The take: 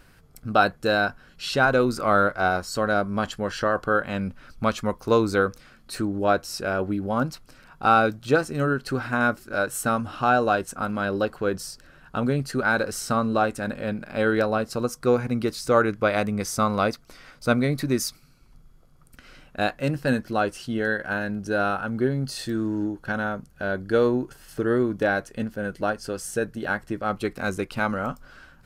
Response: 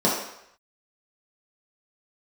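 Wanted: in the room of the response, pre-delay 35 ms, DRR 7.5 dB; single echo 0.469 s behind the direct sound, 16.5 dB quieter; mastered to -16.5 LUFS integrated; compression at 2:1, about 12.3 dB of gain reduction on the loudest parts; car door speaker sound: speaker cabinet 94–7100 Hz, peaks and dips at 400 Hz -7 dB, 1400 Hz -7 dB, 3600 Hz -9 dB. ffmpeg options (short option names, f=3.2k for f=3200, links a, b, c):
-filter_complex "[0:a]acompressor=threshold=-38dB:ratio=2,aecho=1:1:469:0.15,asplit=2[a][b];[1:a]atrim=start_sample=2205,adelay=35[c];[b][c]afir=irnorm=-1:irlink=0,volume=-24.5dB[d];[a][d]amix=inputs=2:normalize=0,highpass=94,equalizer=f=400:t=q:w=4:g=-7,equalizer=f=1.4k:t=q:w=4:g=-7,equalizer=f=3.6k:t=q:w=4:g=-9,lowpass=f=7.1k:w=0.5412,lowpass=f=7.1k:w=1.3066,volume=18.5dB"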